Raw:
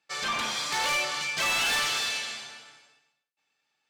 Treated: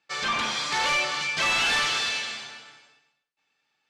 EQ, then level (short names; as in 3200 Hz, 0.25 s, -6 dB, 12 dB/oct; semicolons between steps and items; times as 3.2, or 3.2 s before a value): air absorption 64 m; bell 640 Hz -2 dB; +4.0 dB